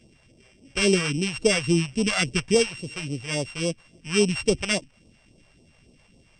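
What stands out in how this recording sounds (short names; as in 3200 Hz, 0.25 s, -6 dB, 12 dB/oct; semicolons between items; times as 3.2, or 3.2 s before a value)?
a buzz of ramps at a fixed pitch in blocks of 16 samples; phasing stages 2, 3.6 Hz, lowest notch 260–1600 Hz; MP3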